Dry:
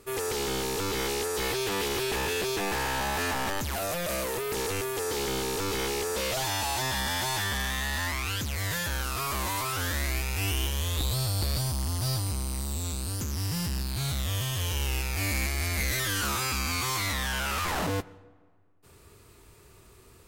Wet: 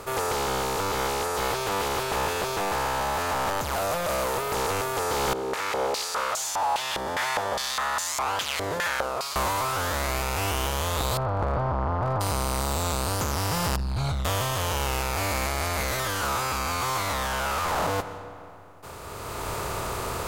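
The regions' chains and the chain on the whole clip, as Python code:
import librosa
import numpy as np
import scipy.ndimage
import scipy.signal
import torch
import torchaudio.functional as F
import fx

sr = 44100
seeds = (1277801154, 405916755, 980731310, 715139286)

y = fx.chain(x, sr, fx.high_shelf(hz=4900.0, db=12.0),
    fx.filter_held_bandpass(hz=4.9, low_hz=370.0, high_hz=6800.0), at=(5.33, 9.36))
y = fx.chain(y, sr, fx.lowpass(hz=1300.0, slope=24),
    fx.clip_hard(threshold_db=-26.0), at=(11.17, 12.21))
y = fx.chain(y, sr, fx.envelope_sharpen(power=2.0),
    fx.air_absorb(metres=57.0), at=(13.76, 14.25))
y = fx.bin_compress(y, sr, power=0.6)
y = fx.band_shelf(y, sr, hz=830.0, db=8.0, octaves=1.7)
y = fx.rider(y, sr, range_db=10, speed_s=0.5)
y = y * librosa.db_to_amplitude(-3.0)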